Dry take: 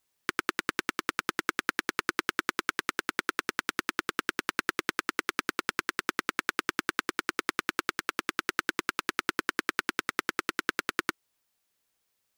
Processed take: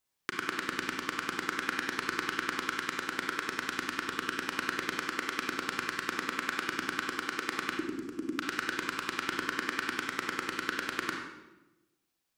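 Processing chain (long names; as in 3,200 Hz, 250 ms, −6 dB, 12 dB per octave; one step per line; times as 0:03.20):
0:07.72–0:08.33: drawn EQ curve 160 Hz 0 dB, 310 Hz +12 dB, 590 Hz −15 dB, 3,500 Hz −19 dB, 6,600 Hz −11 dB
convolution reverb RT60 1.0 s, pre-delay 30 ms, DRR 0 dB
level −5.5 dB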